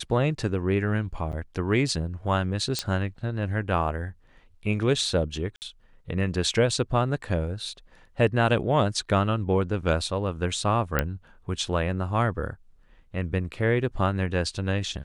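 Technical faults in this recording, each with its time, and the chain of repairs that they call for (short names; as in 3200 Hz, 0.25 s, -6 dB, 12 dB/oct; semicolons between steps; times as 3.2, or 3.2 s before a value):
1.32–1.33 gap 8.1 ms
2.79 pop -11 dBFS
5.56–5.62 gap 59 ms
10.99 pop -8 dBFS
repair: de-click; interpolate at 1.32, 8.1 ms; interpolate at 5.56, 59 ms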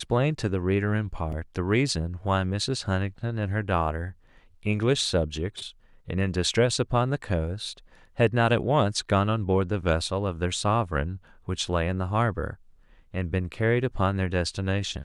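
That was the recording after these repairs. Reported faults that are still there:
none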